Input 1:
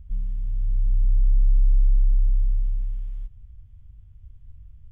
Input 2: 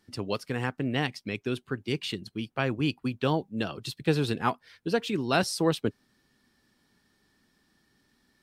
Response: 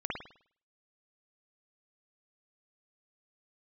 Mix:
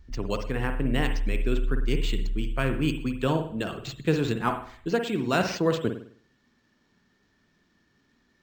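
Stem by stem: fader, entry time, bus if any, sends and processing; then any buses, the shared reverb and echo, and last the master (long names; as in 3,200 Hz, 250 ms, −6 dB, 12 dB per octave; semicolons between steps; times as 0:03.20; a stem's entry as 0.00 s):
−9.0 dB, 0.00 s, no send, no processing
−1.5 dB, 0.00 s, send −7.5 dB, no processing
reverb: on, pre-delay 51 ms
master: notch filter 800 Hz, Q 12; linearly interpolated sample-rate reduction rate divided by 4×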